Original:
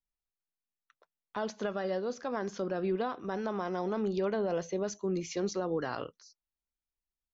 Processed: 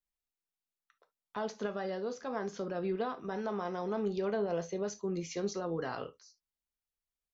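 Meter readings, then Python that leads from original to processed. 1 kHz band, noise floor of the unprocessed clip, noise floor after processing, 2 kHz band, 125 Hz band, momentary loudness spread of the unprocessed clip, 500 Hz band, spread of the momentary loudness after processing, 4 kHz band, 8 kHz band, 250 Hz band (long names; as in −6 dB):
−2.0 dB, below −85 dBFS, below −85 dBFS, −2.5 dB, −2.0 dB, 7 LU, −2.0 dB, 6 LU, −2.5 dB, can't be measured, −3.0 dB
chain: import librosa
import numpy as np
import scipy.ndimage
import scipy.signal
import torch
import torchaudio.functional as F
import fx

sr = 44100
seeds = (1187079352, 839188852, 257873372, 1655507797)

y = fx.rev_gated(x, sr, seeds[0], gate_ms=90, shape='falling', drr_db=7.0)
y = F.gain(torch.from_numpy(y), -3.0).numpy()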